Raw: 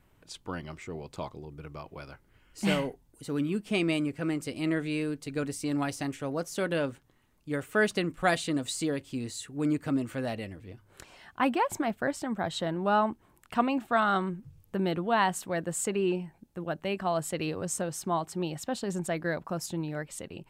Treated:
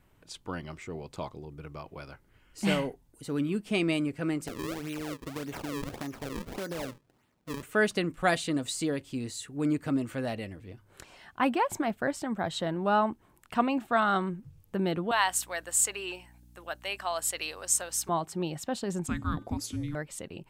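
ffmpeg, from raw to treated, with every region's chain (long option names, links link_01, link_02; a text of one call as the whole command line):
ffmpeg -i in.wav -filter_complex "[0:a]asettb=1/sr,asplit=3[link_01][link_02][link_03];[link_01]atrim=end=4.474[link_04];[link_02]atrim=start=4.47:end=7.63,asetpts=PTS-STARTPTS,afade=type=in:duration=0.004:curve=qsin,afade=type=out:start_time=3.156:duration=0.004:curve=qsin,highpass=110,acrusher=samples=35:mix=1:aa=0.000001:lfo=1:lforange=56:lforate=1.7,acompressor=threshold=-32dB:ratio=5:attack=3.2:release=140:knee=1:detection=peak[link_05];[link_03]atrim=start=7.626[link_06];[link_04][link_05]acrossfade=duration=0.004:curve1=hsin:curve2=qsin[link_07];[link_07][link_06]acrossfade=duration=0.004:curve1=qsin:curve2=hsin,asettb=1/sr,asplit=3[link_08][link_09][link_10];[link_08]atrim=end=15.114[link_11];[link_09]atrim=start=15.11:end=18.09,asetpts=PTS-STARTPTS,afade=type=in:duration=0.004:curve=qsin,afade=type=out:start_time=2.976:duration=0.004:curve=qsin,highpass=790,highshelf=frequency=3300:gain=9.5,aeval=exprs='val(0)+0.00178*(sin(2*PI*60*n/s)+sin(2*PI*2*60*n/s)/2+sin(2*PI*3*60*n/s)/3+sin(2*PI*4*60*n/s)/4+sin(2*PI*5*60*n/s)/5)':channel_layout=same[link_12];[link_10]atrim=start=18.086[link_13];[link_11][link_12]acrossfade=duration=0.004:curve1=hsin:curve2=qsin[link_14];[link_14][link_13]acrossfade=duration=0.004:curve1=qsin:curve2=hsin,asettb=1/sr,asplit=3[link_15][link_16][link_17];[link_15]atrim=end=19.064[link_18];[link_16]atrim=start=19.06:end=19.95,asetpts=PTS-STARTPTS,afade=type=in:duration=0.004:curve=qsin,afade=type=out:start_time=0.886:duration=0.004:curve=qsin,bandreject=frequency=326.4:width_type=h:width=4,bandreject=frequency=652.8:width_type=h:width=4,bandreject=frequency=979.2:width_type=h:width=4,bandreject=frequency=1305.6:width_type=h:width=4,bandreject=frequency=1632:width_type=h:width=4,bandreject=frequency=1958.4:width_type=h:width=4,bandreject=frequency=2284.8:width_type=h:width=4,bandreject=frequency=2611.2:width_type=h:width=4,bandreject=frequency=2937.6:width_type=h:width=4,bandreject=frequency=3264:width_type=h:width=4,bandreject=frequency=3590.4:width_type=h:width=4,bandreject=frequency=3916.8:width_type=h:width=4,bandreject=frequency=4243.2:width_type=h:width=4,bandreject=frequency=4569.6:width_type=h:width=4,bandreject=frequency=4896:width_type=h:width=4,bandreject=frequency=5222.4:width_type=h:width=4,bandreject=frequency=5548.8:width_type=h:width=4,bandreject=frequency=5875.2:width_type=h:width=4,bandreject=frequency=6201.6:width_type=h:width=4,bandreject=frequency=6528:width_type=h:width=4,bandreject=frequency=6854.4:width_type=h:width=4,bandreject=frequency=7180.8:width_type=h:width=4,bandreject=frequency=7507.2:width_type=h:width=4,bandreject=frequency=7833.6:width_type=h:width=4,bandreject=frequency=8160:width_type=h:width=4,bandreject=frequency=8486.4:width_type=h:width=4,bandreject=frequency=8812.8:width_type=h:width=4,bandreject=frequency=9139.2:width_type=h:width=4,bandreject=frequency=9465.6:width_type=h:width=4,bandreject=frequency=9792:width_type=h:width=4,bandreject=frequency=10118.4:width_type=h:width=4,bandreject=frequency=10444.8:width_type=h:width=4,bandreject=frequency=10771.2:width_type=h:width=4,bandreject=frequency=11097.6:width_type=h:width=4,bandreject=frequency=11424:width_type=h:width=4,bandreject=frequency=11750.4:width_type=h:width=4,bandreject=frequency=12076.8:width_type=h:width=4,bandreject=frequency=12403.2:width_type=h:width=4,afreqshift=-440[link_19];[link_17]atrim=start=19.946[link_20];[link_18][link_19]acrossfade=duration=0.004:curve1=hsin:curve2=qsin[link_21];[link_21][link_20]acrossfade=duration=0.004:curve1=qsin:curve2=hsin" out.wav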